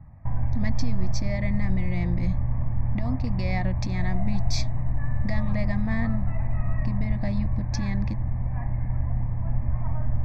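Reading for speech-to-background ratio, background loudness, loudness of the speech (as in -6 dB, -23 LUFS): -3.5 dB, -29.0 LUFS, -32.5 LUFS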